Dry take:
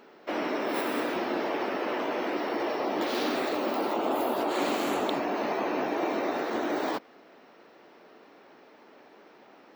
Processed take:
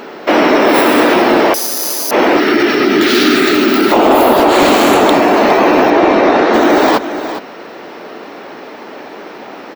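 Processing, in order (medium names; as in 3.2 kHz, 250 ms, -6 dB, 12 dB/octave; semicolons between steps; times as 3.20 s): 2.40–3.92 s: time-frequency box 440–1200 Hz -15 dB; hard clipper -23 dBFS, distortion -20 dB; 5.90–6.54 s: distance through air 91 m; delay 410 ms -14.5 dB; 1.54–2.11 s: careless resampling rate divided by 8×, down none, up zero stuff; loudness maximiser +25 dB; trim -1 dB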